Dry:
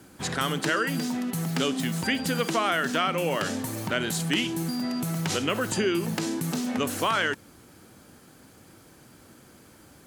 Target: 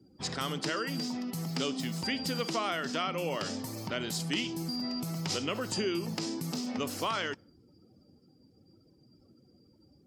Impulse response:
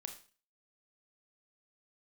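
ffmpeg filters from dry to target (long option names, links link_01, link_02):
-af "equalizer=frequency=1600:width_type=o:width=0.33:gain=-6,equalizer=frequency=5000:width_type=o:width=0.33:gain=10,equalizer=frequency=10000:width_type=o:width=0.33:gain=-4,afftdn=noise_reduction=23:noise_floor=-49,volume=-6.5dB"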